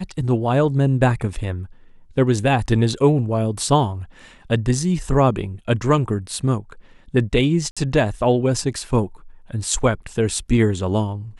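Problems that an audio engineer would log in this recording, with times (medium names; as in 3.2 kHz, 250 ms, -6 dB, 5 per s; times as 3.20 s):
7.71–7.77 s: dropout 56 ms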